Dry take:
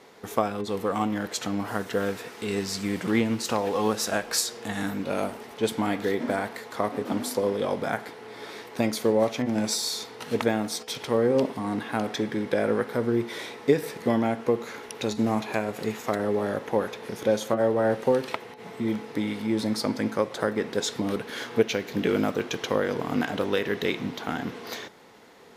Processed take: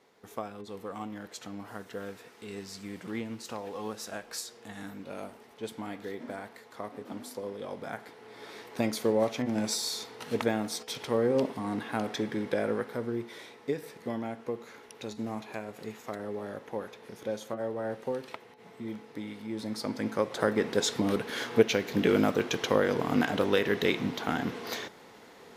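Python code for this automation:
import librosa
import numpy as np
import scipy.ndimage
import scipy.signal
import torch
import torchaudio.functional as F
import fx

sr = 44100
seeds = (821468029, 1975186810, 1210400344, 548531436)

y = fx.gain(x, sr, db=fx.line((7.59, -12.5), (8.78, -4.0), (12.47, -4.0), (13.46, -11.0), (19.48, -11.0), (20.51, 0.0)))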